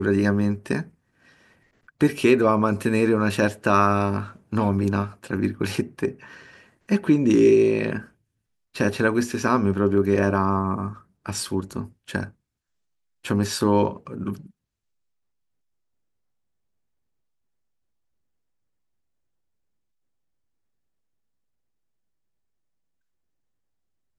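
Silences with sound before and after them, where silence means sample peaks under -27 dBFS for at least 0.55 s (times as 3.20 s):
0.82–2.01 s
6.11–6.89 s
7.99–8.76 s
12.25–13.26 s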